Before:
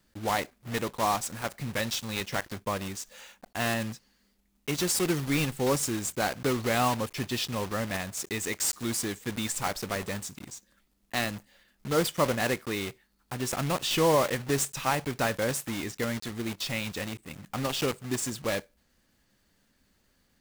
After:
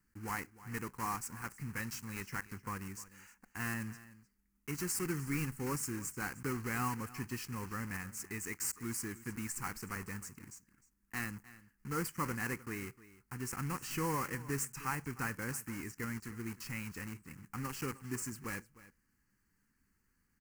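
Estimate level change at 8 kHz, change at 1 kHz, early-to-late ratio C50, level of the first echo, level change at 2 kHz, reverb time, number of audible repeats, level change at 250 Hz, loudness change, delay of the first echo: -9.0 dB, -10.5 dB, no reverb, -18.0 dB, -8.0 dB, no reverb, 1, -8.5 dB, -10.0 dB, 306 ms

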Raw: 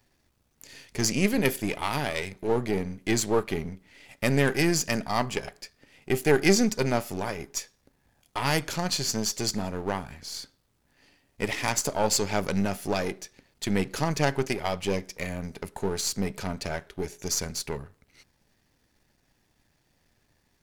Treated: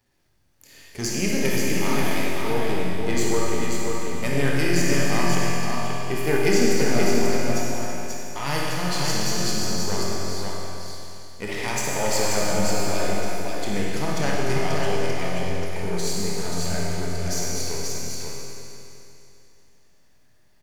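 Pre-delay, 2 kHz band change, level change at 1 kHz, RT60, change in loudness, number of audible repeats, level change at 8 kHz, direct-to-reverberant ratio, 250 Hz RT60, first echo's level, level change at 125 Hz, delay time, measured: 22 ms, +3.5 dB, +3.5 dB, 2.9 s, +2.5 dB, 1, +3.0 dB, -6.5 dB, 2.9 s, -4.0 dB, +4.0 dB, 534 ms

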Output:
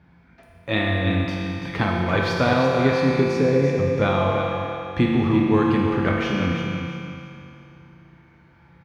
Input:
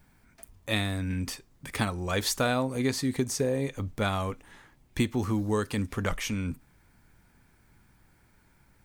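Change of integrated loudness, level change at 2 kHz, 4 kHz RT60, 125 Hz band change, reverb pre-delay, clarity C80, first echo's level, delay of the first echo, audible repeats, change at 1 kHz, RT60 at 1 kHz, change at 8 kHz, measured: +8.5 dB, +9.0 dB, 2.6 s, +8.5 dB, 6 ms, -1.0 dB, -7.5 dB, 338 ms, 2, +10.0 dB, 2.8 s, no reading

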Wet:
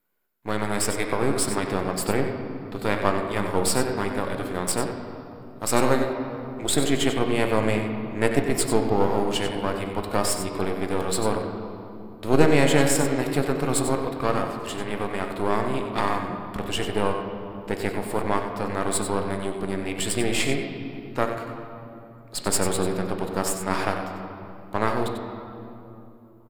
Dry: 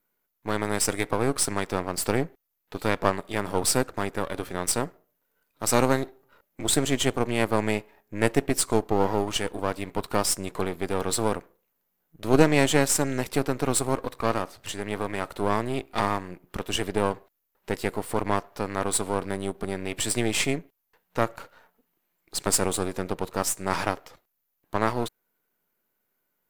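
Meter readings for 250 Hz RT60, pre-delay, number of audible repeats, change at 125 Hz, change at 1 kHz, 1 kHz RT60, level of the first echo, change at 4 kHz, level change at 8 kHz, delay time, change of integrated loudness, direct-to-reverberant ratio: 4.0 s, 11 ms, 1, +2.0 dB, +1.5 dB, 2.6 s, -9.0 dB, +0.5 dB, -1.0 dB, 94 ms, +1.0 dB, 3.0 dB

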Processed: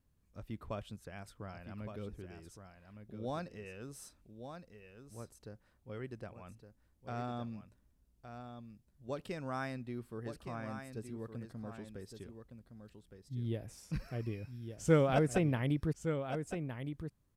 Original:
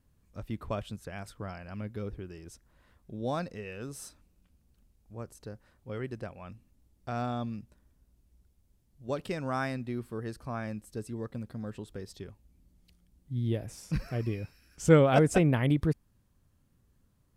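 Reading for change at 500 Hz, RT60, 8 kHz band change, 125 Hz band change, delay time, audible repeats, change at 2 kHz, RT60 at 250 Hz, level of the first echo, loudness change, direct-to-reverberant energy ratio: -6.5 dB, no reverb, -6.5 dB, -6.5 dB, 1164 ms, 1, -6.5 dB, no reverb, -8.5 dB, -7.0 dB, no reverb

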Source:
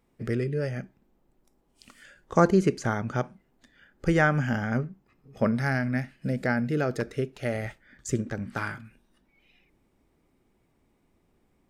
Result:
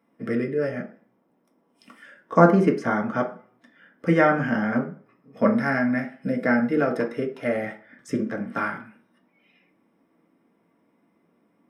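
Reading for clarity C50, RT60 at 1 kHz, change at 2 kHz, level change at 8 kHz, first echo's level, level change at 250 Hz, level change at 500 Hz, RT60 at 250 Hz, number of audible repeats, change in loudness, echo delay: 11.5 dB, 0.50 s, +3.5 dB, no reading, no echo, +5.0 dB, +5.0 dB, 0.35 s, no echo, +4.0 dB, no echo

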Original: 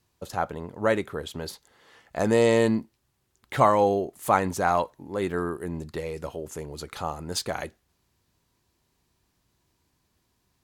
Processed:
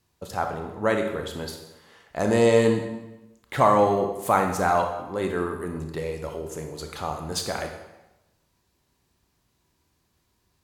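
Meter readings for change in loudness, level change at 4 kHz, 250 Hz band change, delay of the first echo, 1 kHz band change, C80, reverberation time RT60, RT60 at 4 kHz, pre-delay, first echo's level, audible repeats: +1.0 dB, +1.0 dB, +1.0 dB, no echo, +1.5 dB, 8.5 dB, 1.0 s, 0.85 s, 22 ms, no echo, no echo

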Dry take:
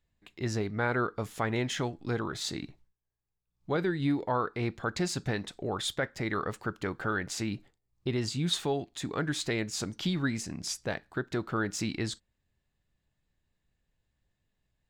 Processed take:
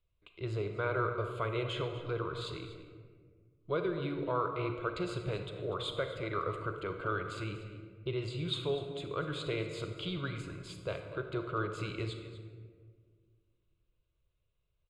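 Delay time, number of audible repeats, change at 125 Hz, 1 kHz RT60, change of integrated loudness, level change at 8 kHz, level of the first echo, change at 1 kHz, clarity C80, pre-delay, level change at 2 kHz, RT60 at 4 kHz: 243 ms, 1, -3.5 dB, 1.4 s, -4.0 dB, -18.5 dB, -15.0 dB, -2.5 dB, 7.5 dB, 36 ms, -6.0 dB, 0.85 s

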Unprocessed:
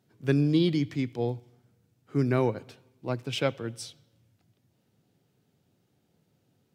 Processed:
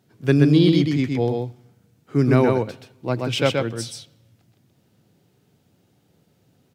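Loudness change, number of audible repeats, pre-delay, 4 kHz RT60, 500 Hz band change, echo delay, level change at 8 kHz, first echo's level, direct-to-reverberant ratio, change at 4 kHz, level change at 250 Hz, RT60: +8.0 dB, 1, no reverb, no reverb, +8.5 dB, 128 ms, +8.5 dB, -3.5 dB, no reverb, +8.5 dB, +9.0 dB, no reverb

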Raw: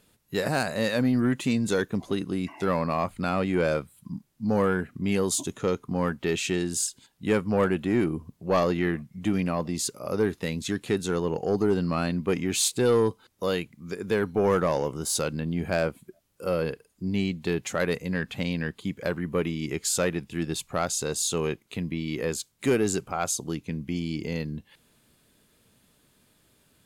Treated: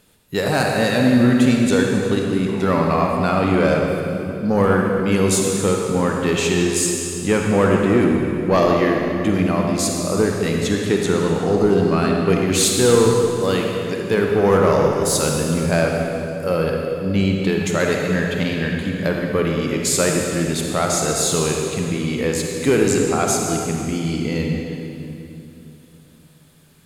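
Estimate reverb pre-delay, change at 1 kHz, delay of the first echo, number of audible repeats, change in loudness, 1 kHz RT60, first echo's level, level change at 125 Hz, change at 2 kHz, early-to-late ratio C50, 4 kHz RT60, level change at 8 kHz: 38 ms, +9.0 dB, no echo, no echo, +9.0 dB, 2.7 s, no echo, +9.5 dB, +8.5 dB, 0.5 dB, 2.3 s, +8.5 dB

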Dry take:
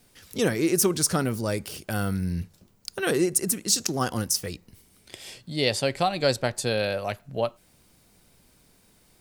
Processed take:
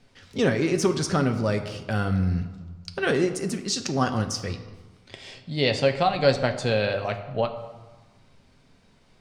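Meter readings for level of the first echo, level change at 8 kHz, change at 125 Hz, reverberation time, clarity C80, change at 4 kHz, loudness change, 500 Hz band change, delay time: no echo, -9.0 dB, +4.0 dB, 1.3 s, 12.5 dB, -1.0 dB, +0.5 dB, +2.5 dB, no echo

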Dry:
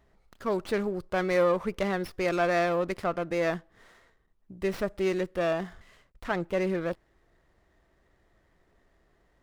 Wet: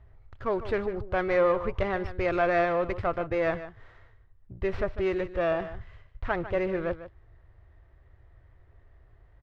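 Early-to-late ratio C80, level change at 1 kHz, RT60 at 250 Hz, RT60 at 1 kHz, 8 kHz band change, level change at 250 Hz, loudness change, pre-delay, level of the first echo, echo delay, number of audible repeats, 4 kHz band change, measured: no reverb, +1.5 dB, no reverb, no reverb, under -15 dB, -1.5 dB, +0.5 dB, no reverb, -13.0 dB, 149 ms, 1, -4.5 dB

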